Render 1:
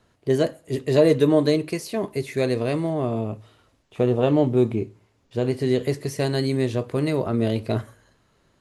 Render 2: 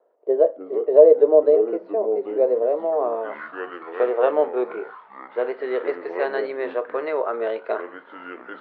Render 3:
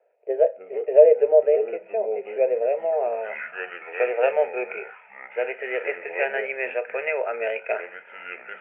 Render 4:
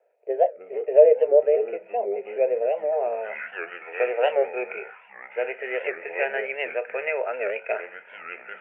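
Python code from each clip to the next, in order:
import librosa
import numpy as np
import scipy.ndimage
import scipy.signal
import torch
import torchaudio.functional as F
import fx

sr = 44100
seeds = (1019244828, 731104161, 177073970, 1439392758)

y1 = fx.echo_pitch(x, sr, ms=181, semitones=-6, count=3, db_per_echo=-6.0)
y1 = scipy.signal.sosfilt(scipy.signal.ellip(3, 1.0, 60, [460.0, 4100.0], 'bandpass', fs=sr, output='sos'), y1)
y1 = fx.filter_sweep_lowpass(y1, sr, from_hz=590.0, to_hz=1500.0, start_s=2.68, end_s=3.39, q=1.7)
y1 = y1 * 10.0 ** (3.0 / 20.0)
y2 = fx.lowpass_res(y1, sr, hz=2500.0, q=15.0)
y2 = fx.fixed_phaser(y2, sr, hz=1100.0, stages=6)
y2 = y2 * 10.0 ** (-1.0 / 20.0)
y3 = fx.record_warp(y2, sr, rpm=78.0, depth_cents=160.0)
y3 = y3 * 10.0 ** (-1.0 / 20.0)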